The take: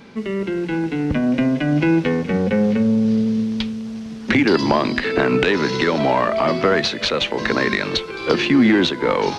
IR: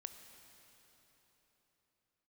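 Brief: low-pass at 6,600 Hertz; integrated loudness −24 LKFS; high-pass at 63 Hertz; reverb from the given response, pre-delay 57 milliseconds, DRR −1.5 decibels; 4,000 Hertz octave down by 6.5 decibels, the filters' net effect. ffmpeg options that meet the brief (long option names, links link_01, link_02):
-filter_complex "[0:a]highpass=63,lowpass=6600,equalizer=frequency=4000:width_type=o:gain=-7.5,asplit=2[link_01][link_02];[1:a]atrim=start_sample=2205,adelay=57[link_03];[link_02][link_03]afir=irnorm=-1:irlink=0,volume=6dB[link_04];[link_01][link_04]amix=inputs=2:normalize=0,volume=-8.5dB"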